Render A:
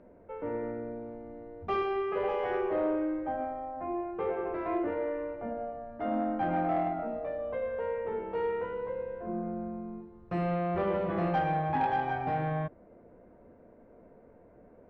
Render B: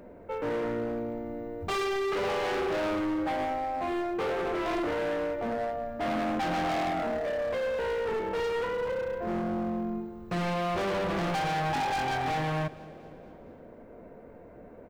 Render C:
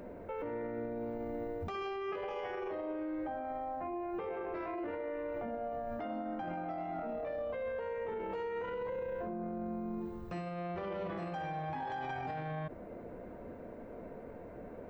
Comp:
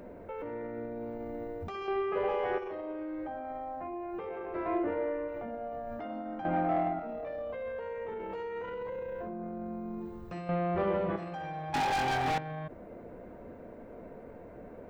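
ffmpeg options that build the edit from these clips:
-filter_complex "[0:a]asplit=4[a][b][c][d];[2:a]asplit=6[e][f][g][h][i][j];[e]atrim=end=1.882[k];[a]atrim=start=1.878:end=2.582[l];[f]atrim=start=2.578:end=4.552[m];[b]atrim=start=4.548:end=5.282[n];[g]atrim=start=5.278:end=6.452[o];[c]atrim=start=6.448:end=6.992[p];[h]atrim=start=6.988:end=10.492[q];[d]atrim=start=10.488:end=11.162[r];[i]atrim=start=11.158:end=11.742[s];[1:a]atrim=start=11.738:end=12.382[t];[j]atrim=start=12.378[u];[k][l]acrossfade=d=0.004:c1=hsin:c2=hsin[v];[v][m]acrossfade=d=0.004:c1=hsin:c2=hsin[w];[w][n]acrossfade=d=0.004:c1=hsin:c2=hsin[x];[x][o]acrossfade=d=0.004:c1=hsin:c2=hsin[y];[y][p]acrossfade=d=0.004:c1=hsin:c2=hsin[z];[z][q]acrossfade=d=0.004:c1=hsin:c2=hsin[aa];[aa][r]acrossfade=d=0.004:c1=hsin:c2=hsin[ab];[ab][s]acrossfade=d=0.004:c1=hsin:c2=hsin[ac];[ac][t]acrossfade=d=0.004:c1=hsin:c2=hsin[ad];[ad][u]acrossfade=d=0.004:c1=hsin:c2=hsin"

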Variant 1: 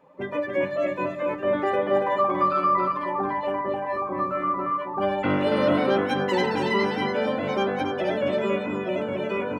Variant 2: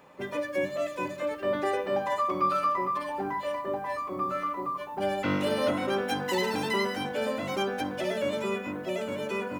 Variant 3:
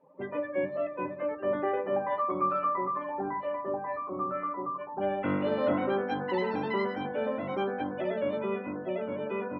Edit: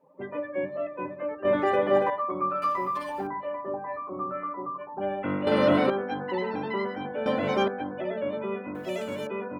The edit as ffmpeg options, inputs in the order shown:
-filter_complex "[0:a]asplit=3[a][b][c];[1:a]asplit=2[d][e];[2:a]asplit=6[f][g][h][i][j][k];[f]atrim=end=1.452[l];[a]atrim=start=1.448:end=2.102[m];[g]atrim=start=2.098:end=2.622[n];[d]atrim=start=2.618:end=3.272[o];[h]atrim=start=3.268:end=5.472[p];[b]atrim=start=5.468:end=5.902[q];[i]atrim=start=5.898:end=7.262[r];[c]atrim=start=7.258:end=7.682[s];[j]atrim=start=7.678:end=8.752[t];[e]atrim=start=8.748:end=9.272[u];[k]atrim=start=9.268[v];[l][m]acrossfade=d=0.004:c1=hsin:c2=hsin[w];[w][n]acrossfade=d=0.004:c1=hsin:c2=hsin[x];[x][o]acrossfade=d=0.004:c1=hsin:c2=hsin[y];[y][p]acrossfade=d=0.004:c1=hsin:c2=hsin[z];[z][q]acrossfade=d=0.004:c1=hsin:c2=hsin[aa];[aa][r]acrossfade=d=0.004:c1=hsin:c2=hsin[ab];[ab][s]acrossfade=d=0.004:c1=hsin:c2=hsin[ac];[ac][t]acrossfade=d=0.004:c1=hsin:c2=hsin[ad];[ad][u]acrossfade=d=0.004:c1=hsin:c2=hsin[ae];[ae][v]acrossfade=d=0.004:c1=hsin:c2=hsin"

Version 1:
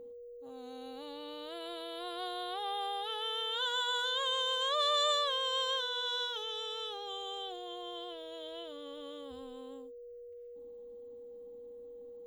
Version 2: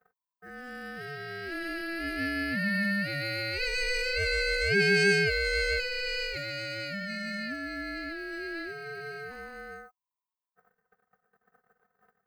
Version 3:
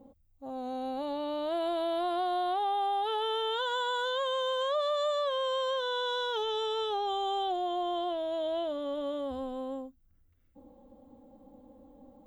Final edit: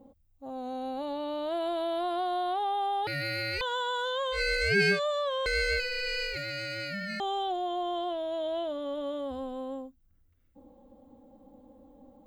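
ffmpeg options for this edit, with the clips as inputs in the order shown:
-filter_complex "[1:a]asplit=3[a][b][c];[2:a]asplit=4[d][e][f][g];[d]atrim=end=3.072[h];[a]atrim=start=3.068:end=3.612[i];[e]atrim=start=3.608:end=4.41[j];[b]atrim=start=4.31:end=5[k];[f]atrim=start=4.9:end=5.462[l];[c]atrim=start=5.458:end=7.202[m];[g]atrim=start=7.198[n];[h][i]acrossfade=d=0.004:c1=hsin:c2=hsin[o];[o][j]acrossfade=d=0.004:c1=hsin:c2=hsin[p];[p][k]acrossfade=d=0.1:c1=tri:c2=tri[q];[q][l]acrossfade=d=0.1:c1=tri:c2=tri[r];[r][m]acrossfade=d=0.004:c1=hsin:c2=hsin[s];[s][n]acrossfade=d=0.004:c1=hsin:c2=hsin"

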